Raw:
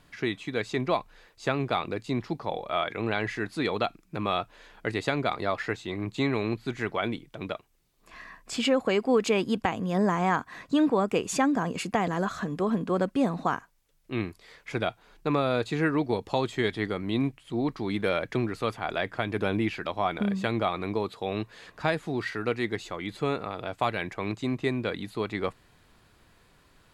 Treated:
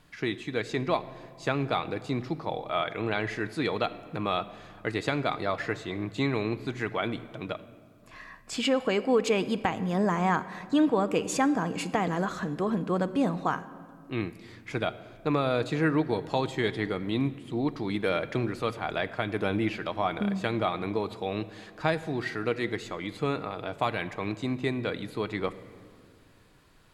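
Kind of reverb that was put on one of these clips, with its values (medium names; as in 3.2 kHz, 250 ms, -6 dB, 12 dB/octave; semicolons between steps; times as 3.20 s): simulated room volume 3900 m³, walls mixed, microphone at 0.54 m; trim -1 dB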